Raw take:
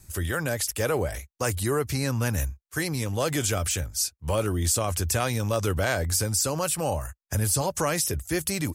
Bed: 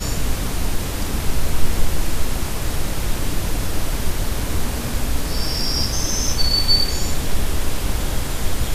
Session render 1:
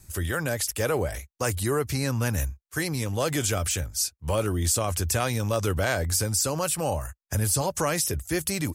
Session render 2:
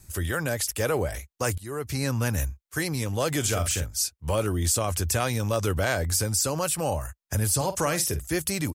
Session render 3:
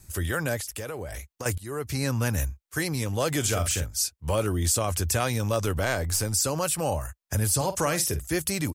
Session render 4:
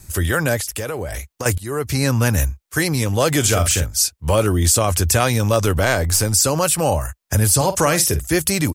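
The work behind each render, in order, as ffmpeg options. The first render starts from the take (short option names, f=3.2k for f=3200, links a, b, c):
-af anull
-filter_complex "[0:a]asplit=3[a][b][c];[a]afade=t=out:st=3.44:d=0.02[d];[b]asplit=2[e][f];[f]adelay=45,volume=-8dB[g];[e][g]amix=inputs=2:normalize=0,afade=t=in:st=3.44:d=0.02,afade=t=out:st=3.84:d=0.02[h];[c]afade=t=in:st=3.84:d=0.02[i];[d][h][i]amix=inputs=3:normalize=0,asplit=3[j][k][l];[j]afade=t=out:st=7.59:d=0.02[m];[k]asplit=2[n][o];[o]adelay=49,volume=-12.5dB[p];[n][p]amix=inputs=2:normalize=0,afade=t=in:st=7.59:d=0.02,afade=t=out:st=8.29:d=0.02[q];[l]afade=t=in:st=8.29:d=0.02[r];[m][q][r]amix=inputs=3:normalize=0,asplit=2[s][t];[s]atrim=end=1.58,asetpts=PTS-STARTPTS,afade=t=out:st=1.576:d=0.004:c=hsin:silence=0.0891251[u];[t]atrim=start=1.58,asetpts=PTS-STARTPTS,afade=t=in:d=0.46:silence=0.0891251[v];[u][v]concat=n=2:v=0:a=1"
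-filter_complex "[0:a]asettb=1/sr,asplit=3[a][b][c];[a]atrim=end=0.574[d];[b]atrim=start=0.57:end=1.46,asetpts=PTS-STARTPTS,afade=t=in:d=0.004:c=qsin,afade=t=out:st=0.886:d=0.004:c=qsin,acompressor=threshold=-31dB:ratio=6:attack=3.2:release=140:knee=1:detection=peak[e];[c]atrim=start=1.456[f];[d][e]acrossfade=d=0.004:c1=hsin:c2=qsin[g];[g][f]acrossfade=d=0.004:c1=qsin:c2=hsin,asettb=1/sr,asplit=3[h][i][j];[h]atrim=end=5.624[k];[i]atrim=start=5.62:end=6.33,asetpts=PTS-STARTPTS,afade=t=in:d=0.004:c=qsin,afade=t=out:st=0.706:d=0.004:c=qsin,aeval=exprs='if(lt(val(0),0),0.708*val(0),val(0))':c=same[l];[j]atrim=start=6.326[m];[k][l]acrossfade=d=0.004:c1=hsin:c2=qsin[n];[n][m]acrossfade=d=0.004:c1=qsin:c2=hsin"
-af "volume=9dB,alimiter=limit=-3dB:level=0:latency=1"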